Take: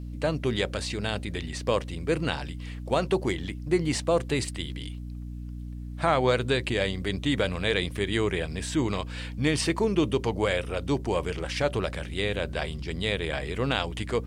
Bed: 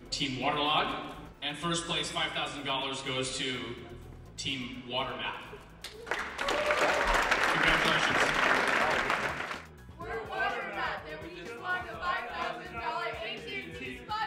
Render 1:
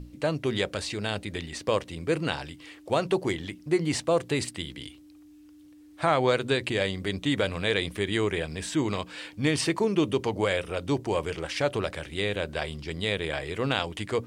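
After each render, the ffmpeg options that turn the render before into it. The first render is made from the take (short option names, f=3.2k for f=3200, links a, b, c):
-af "bandreject=f=60:t=h:w=6,bandreject=f=120:t=h:w=6,bandreject=f=180:t=h:w=6,bandreject=f=240:t=h:w=6"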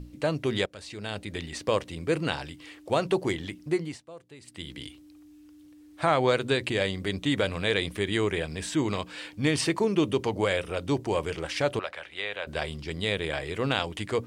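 -filter_complex "[0:a]asettb=1/sr,asplit=3[a][b][c];[a]atrim=end=11.794[d];[b]atrim=start=11.79:end=12.47,asetpts=PTS-STARTPTS,afade=t=in:d=0.004:c=qsin,afade=t=out:st=0.676:d=0.004:c=qsin,acrossover=split=570 3900:gain=0.1 1 0.2[e][f][g];[e][f][g]amix=inputs=3:normalize=0[h];[c]atrim=start=12.466[i];[d][h]acrossfade=d=0.004:c1=hsin:c2=qsin[j];[j][i]acrossfade=d=0.004:c1=qsin:c2=hsin,asplit=4[k][l][m][n];[k]atrim=end=0.66,asetpts=PTS-STARTPTS,afade=t=out:st=0.656:d=0.004:c=hsin:silence=0.125893[o];[l]atrim=start=0.66:end=3.99,asetpts=PTS-STARTPTS,afade=t=in:d=0.79:silence=0.125893,afade=t=out:st=3:d=0.33:silence=0.0841395[p];[m]atrim=start=3.99:end=4.43,asetpts=PTS-STARTPTS,volume=-21.5dB[q];[n]atrim=start=4.43,asetpts=PTS-STARTPTS,afade=t=in:d=0.33:silence=0.0841395[r];[o][p][q][r]concat=n=4:v=0:a=1"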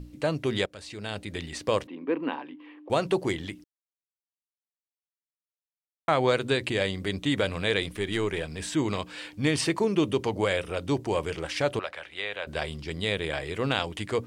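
-filter_complex "[0:a]asettb=1/sr,asplit=3[a][b][c];[a]atrim=end=1.874[d];[b]atrim=start=1.87:end=2.9,asetpts=PTS-STARTPTS,afade=t=in:d=0.004:c=qsin,afade=t=out:st=1.026:d=0.004:c=qsin,highpass=f=260:w=0.5412,highpass=f=260:w=1.3066,equalizer=f=260:t=q:w=4:g=10,equalizer=f=430:t=q:w=4:g=-3,equalizer=f=650:t=q:w=4:g=-6,equalizer=f=1k:t=q:w=4:g=6,equalizer=f=1.4k:t=q:w=4:g=-8,equalizer=f=2.1k:t=q:w=4:g=-6,lowpass=f=2.4k:w=0.5412,lowpass=f=2.4k:w=1.3066[e];[c]atrim=start=2.896[f];[d][e]acrossfade=d=0.004:c1=hsin:c2=qsin[g];[g][f]acrossfade=d=0.004:c1=qsin:c2=hsin,asettb=1/sr,asplit=3[h][i][j];[h]atrim=end=7.824[k];[i]atrim=start=7.82:end=8.6,asetpts=PTS-STARTPTS,afade=t=in:d=0.004:c=qsin,afade=t=out:st=0.776:d=0.004:c=qsin,aeval=exprs='if(lt(val(0),0),0.708*val(0),val(0))':c=same[l];[j]atrim=start=8.596[m];[k][l]acrossfade=d=0.004:c1=hsin:c2=qsin[n];[n][m]acrossfade=d=0.004:c1=qsin:c2=hsin,asplit=3[o][p][q];[o]atrim=end=3.64,asetpts=PTS-STARTPTS,afade=t=out:st=3.636:d=0.004:c=hsin[r];[p]atrim=start=3.64:end=6.08,asetpts=PTS-STARTPTS,volume=0[s];[q]atrim=start=6.08,asetpts=PTS-STARTPTS,afade=t=in:d=0.004:c=hsin[t];[r][s][t]concat=n=3:v=0:a=1"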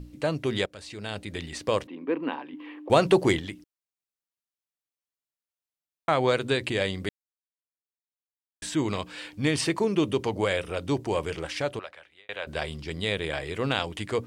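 -filter_complex "[0:a]asettb=1/sr,asplit=3[a][b][c];[a]atrim=end=2.534[d];[b]atrim=start=2.53:end=3.4,asetpts=PTS-STARTPTS,afade=t=in:d=0.004:c=qsin,afade=t=out:st=0.866:d=0.004:c=qsin,acontrast=52[e];[c]atrim=start=3.396[f];[d][e]acrossfade=d=0.004:c1=hsin:c2=qsin[g];[g][f]acrossfade=d=0.004:c1=qsin:c2=hsin,asplit=4[h][i][j][k];[h]atrim=end=7.09,asetpts=PTS-STARTPTS,afade=t=out:st=7.086:d=0.004:c=hsin[l];[i]atrim=start=7.09:end=8.62,asetpts=PTS-STARTPTS,volume=0[m];[j]atrim=start=8.62:end=12.29,asetpts=PTS-STARTPTS,afade=t=in:d=0.004:c=hsin,afade=t=out:st=2.78:d=0.89[n];[k]atrim=start=12.29,asetpts=PTS-STARTPTS,afade=t=in:d=0.004:c=hsin[o];[l][m][n][o]concat=n=4:v=0:a=1"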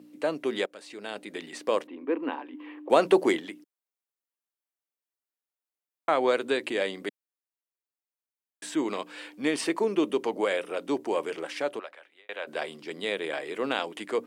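-af "highpass=f=250:w=0.5412,highpass=f=250:w=1.3066,equalizer=f=5k:t=o:w=1.9:g=-5.5"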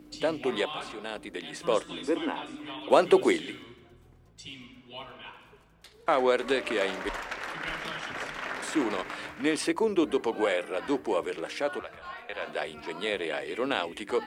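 -filter_complex "[1:a]volume=-9.5dB[a];[0:a][a]amix=inputs=2:normalize=0"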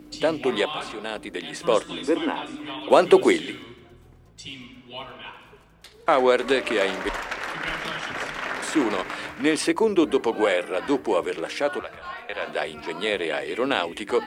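-af "volume=5.5dB,alimiter=limit=-3dB:level=0:latency=1"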